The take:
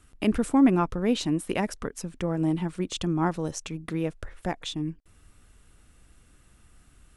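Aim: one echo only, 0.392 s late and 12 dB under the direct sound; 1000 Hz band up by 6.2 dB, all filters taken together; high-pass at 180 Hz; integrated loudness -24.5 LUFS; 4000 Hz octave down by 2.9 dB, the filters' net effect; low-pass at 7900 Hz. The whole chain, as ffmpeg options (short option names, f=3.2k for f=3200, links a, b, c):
-af "highpass=180,lowpass=7.9k,equalizer=f=1k:t=o:g=8,equalizer=f=4k:t=o:g=-4,aecho=1:1:392:0.251,volume=2.5dB"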